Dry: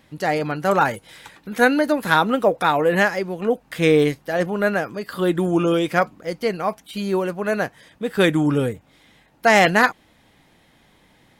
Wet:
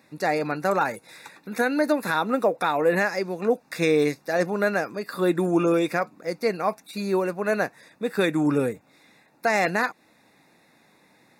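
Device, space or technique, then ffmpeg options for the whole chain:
PA system with an anti-feedback notch: -filter_complex "[0:a]highpass=180,asuperstop=centerf=3100:order=12:qfactor=4.7,alimiter=limit=0.355:level=0:latency=1:release=217,asettb=1/sr,asplit=3[s0][s1][s2];[s0]atrim=end=3.084[s3];[s1]atrim=start=3.08:end=4.89,asetpts=PTS-STARTPTS,afade=t=in:d=0.004:c=qsin,afade=t=out:st=1.806:d=0.004:c=qsin,equalizer=f=5500:t=o:w=0.89:g=5[s4];[s2]atrim=start=4.886[s5];[s3][s4]acrossfade=d=0.004:c1=hsin:c2=qsin[s6];[s6][s5]acrossfade=d=0.004:c1=qsin:c2=hsin,volume=0.841"

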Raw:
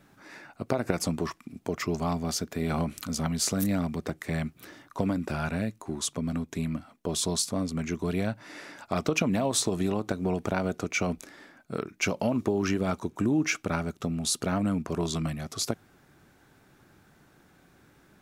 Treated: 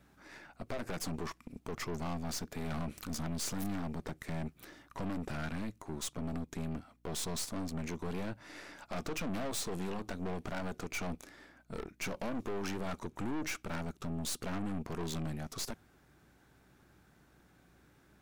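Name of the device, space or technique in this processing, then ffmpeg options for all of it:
valve amplifier with mains hum: -af "aeval=exprs='(tanh(50.1*val(0)+0.8)-tanh(0.8))/50.1':c=same,aeval=exprs='val(0)+0.000355*(sin(2*PI*60*n/s)+sin(2*PI*2*60*n/s)/2+sin(2*PI*3*60*n/s)/3+sin(2*PI*4*60*n/s)/4+sin(2*PI*5*60*n/s)/5)':c=same,volume=0.891"

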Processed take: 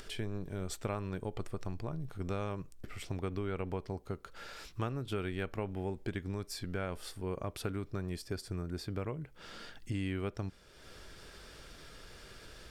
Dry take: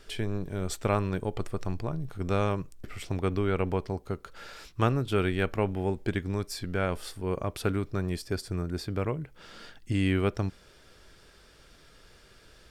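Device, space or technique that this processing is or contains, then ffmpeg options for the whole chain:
upward and downward compression: -af "acompressor=mode=upward:threshold=0.0141:ratio=2.5,acompressor=threshold=0.0355:ratio=3,volume=0.596"

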